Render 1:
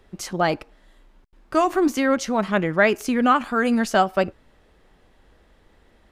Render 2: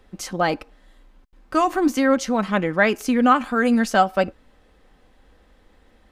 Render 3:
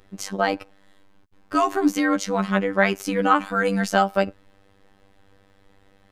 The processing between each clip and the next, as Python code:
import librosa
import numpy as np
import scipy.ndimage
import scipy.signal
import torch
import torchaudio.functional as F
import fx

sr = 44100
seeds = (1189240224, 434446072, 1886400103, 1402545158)

y1 = x + 0.35 * np.pad(x, (int(3.9 * sr / 1000.0), 0))[:len(x)]
y2 = fx.robotise(y1, sr, hz=98.1)
y2 = y2 * 10.0 ** (1.5 / 20.0)